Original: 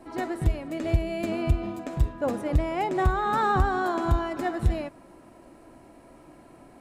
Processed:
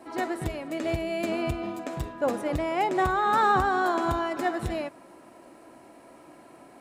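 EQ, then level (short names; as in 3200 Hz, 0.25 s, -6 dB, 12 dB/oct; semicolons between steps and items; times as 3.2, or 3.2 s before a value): HPF 350 Hz 6 dB/oct; +3.0 dB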